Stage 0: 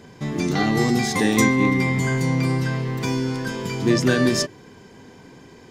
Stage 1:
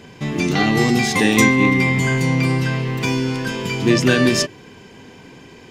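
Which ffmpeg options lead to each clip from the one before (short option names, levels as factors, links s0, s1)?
-af "equalizer=f=2700:t=o:w=0.57:g=8.5,volume=1.41"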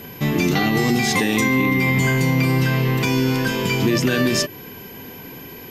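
-af "alimiter=limit=0.237:level=0:latency=1:release=158,aeval=exprs='val(0)+0.00708*sin(2*PI*12000*n/s)':c=same,volume=1.5"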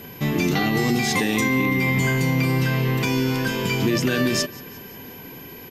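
-af "aecho=1:1:178|356|534|712:0.0794|0.0445|0.0249|0.0139,volume=0.75"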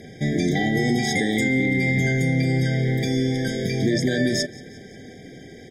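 -af "afftfilt=real='re*eq(mod(floor(b*sr/1024/780),2),0)':imag='im*eq(mod(floor(b*sr/1024/780),2),0)':win_size=1024:overlap=0.75"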